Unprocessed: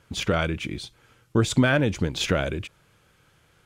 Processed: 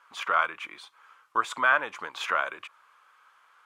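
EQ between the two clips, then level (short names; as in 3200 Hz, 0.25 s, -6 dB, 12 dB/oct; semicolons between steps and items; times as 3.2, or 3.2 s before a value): dynamic EQ 5000 Hz, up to -6 dB, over -44 dBFS, Q 0.93; resonant high-pass 1100 Hz, resonance Q 4.5; high shelf 2900 Hz -9 dB; 0.0 dB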